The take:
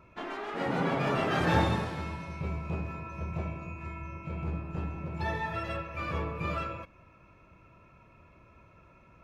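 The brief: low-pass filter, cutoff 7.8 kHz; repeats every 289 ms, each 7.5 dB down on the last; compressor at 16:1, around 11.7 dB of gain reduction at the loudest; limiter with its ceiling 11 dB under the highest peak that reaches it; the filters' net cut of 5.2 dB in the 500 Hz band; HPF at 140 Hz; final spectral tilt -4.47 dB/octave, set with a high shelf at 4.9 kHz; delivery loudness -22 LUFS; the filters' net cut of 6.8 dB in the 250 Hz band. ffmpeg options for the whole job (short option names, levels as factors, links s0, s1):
-af "highpass=140,lowpass=7800,equalizer=f=250:t=o:g=-8,equalizer=f=500:t=o:g=-4.5,highshelf=f=4900:g=-4,acompressor=threshold=0.0178:ratio=16,alimiter=level_in=4.47:limit=0.0631:level=0:latency=1,volume=0.224,aecho=1:1:289|578|867|1156|1445:0.422|0.177|0.0744|0.0312|0.0131,volume=13.3"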